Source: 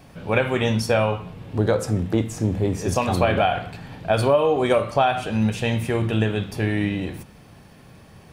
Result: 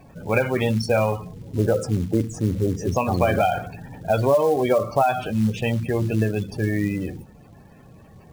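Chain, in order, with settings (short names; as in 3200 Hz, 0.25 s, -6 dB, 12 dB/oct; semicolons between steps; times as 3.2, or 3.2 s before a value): spectral gate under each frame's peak -20 dB strong; companded quantiser 6-bit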